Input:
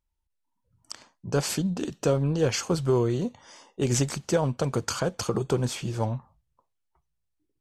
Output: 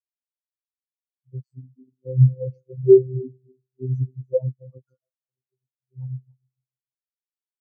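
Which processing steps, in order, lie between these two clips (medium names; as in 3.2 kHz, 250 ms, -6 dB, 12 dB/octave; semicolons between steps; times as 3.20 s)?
backward echo that repeats 147 ms, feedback 68%, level -9 dB; 4.97–5.92 s: feedback comb 110 Hz, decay 0.83 s, harmonics all, mix 90%; in parallel at +1 dB: peak limiter -20 dBFS, peak gain reduction 9 dB; on the sum: robot voice 129 Hz; spectral contrast expander 4:1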